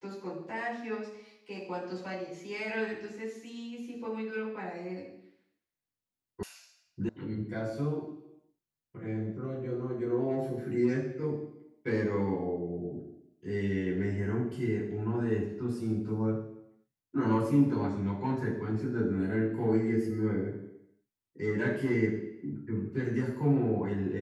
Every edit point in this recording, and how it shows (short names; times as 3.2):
6.43 sound cut off
7.09 sound cut off